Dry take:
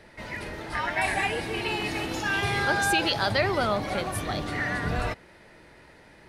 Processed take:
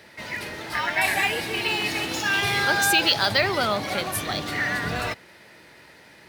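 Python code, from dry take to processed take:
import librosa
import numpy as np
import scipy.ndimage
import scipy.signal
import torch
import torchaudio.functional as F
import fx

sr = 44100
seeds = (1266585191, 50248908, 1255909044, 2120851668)

y = scipy.signal.sosfilt(scipy.signal.butter(2, 93.0, 'highpass', fs=sr, output='sos'), x)
y = fx.high_shelf(y, sr, hz=2100.0, db=10.5)
y = np.interp(np.arange(len(y)), np.arange(len(y))[::2], y[::2])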